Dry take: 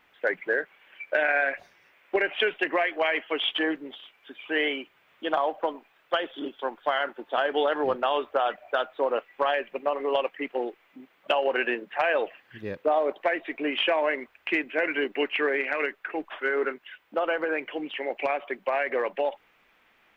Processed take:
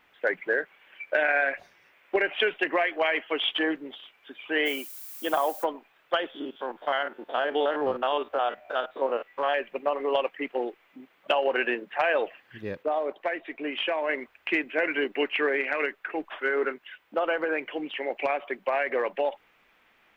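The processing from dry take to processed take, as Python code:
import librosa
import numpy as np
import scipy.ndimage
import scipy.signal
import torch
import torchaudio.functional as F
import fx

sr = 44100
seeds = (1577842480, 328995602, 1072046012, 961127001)

y = fx.dmg_noise_colour(x, sr, seeds[0], colour='violet', level_db=-42.0, at=(4.65, 5.63), fade=0.02)
y = fx.spec_steps(y, sr, hold_ms=50, at=(6.3, 9.55))
y = fx.edit(y, sr, fx.clip_gain(start_s=12.83, length_s=1.26, db=-4.0), tone=tone)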